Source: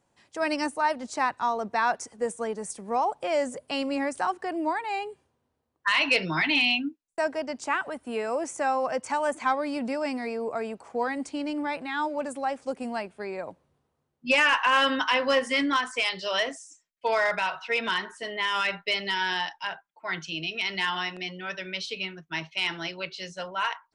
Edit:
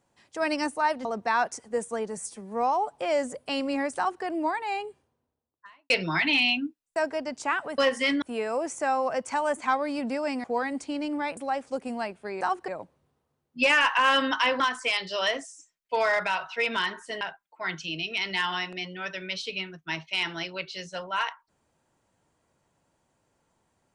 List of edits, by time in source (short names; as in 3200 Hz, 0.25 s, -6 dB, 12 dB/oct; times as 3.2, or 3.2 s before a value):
1.05–1.53 cut
2.65–3.17 stretch 1.5×
4.19–4.46 copy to 13.36
5.04–6.12 studio fade out
10.22–10.89 cut
11.82–12.32 cut
15.28–15.72 move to 8
18.33–19.65 cut